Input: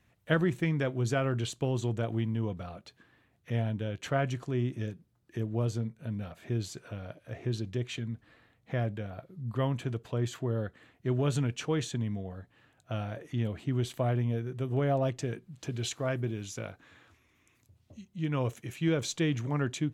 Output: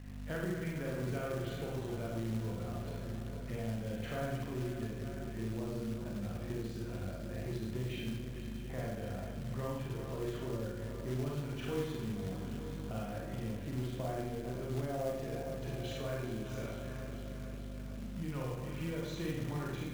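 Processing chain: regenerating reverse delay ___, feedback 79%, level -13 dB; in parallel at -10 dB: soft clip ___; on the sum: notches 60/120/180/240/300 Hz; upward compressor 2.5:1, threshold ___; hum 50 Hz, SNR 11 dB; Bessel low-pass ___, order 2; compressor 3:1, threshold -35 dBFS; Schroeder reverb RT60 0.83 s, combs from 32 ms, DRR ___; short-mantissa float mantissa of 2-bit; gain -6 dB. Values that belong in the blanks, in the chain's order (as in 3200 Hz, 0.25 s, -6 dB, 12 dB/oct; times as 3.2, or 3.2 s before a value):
0.223 s, -26 dBFS, -48 dBFS, 2400 Hz, -3.5 dB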